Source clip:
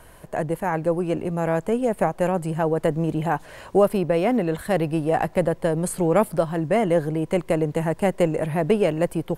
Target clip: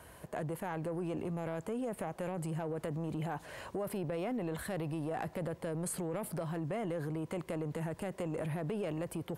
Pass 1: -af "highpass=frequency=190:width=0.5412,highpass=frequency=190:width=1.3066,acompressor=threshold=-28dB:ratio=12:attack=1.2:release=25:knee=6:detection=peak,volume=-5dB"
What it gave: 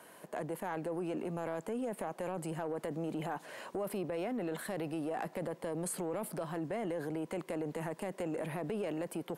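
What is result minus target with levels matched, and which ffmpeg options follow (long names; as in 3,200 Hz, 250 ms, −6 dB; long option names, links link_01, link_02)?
125 Hz band −5.0 dB
-af "highpass=frequency=53:width=0.5412,highpass=frequency=53:width=1.3066,acompressor=threshold=-28dB:ratio=12:attack=1.2:release=25:knee=6:detection=peak,volume=-5dB"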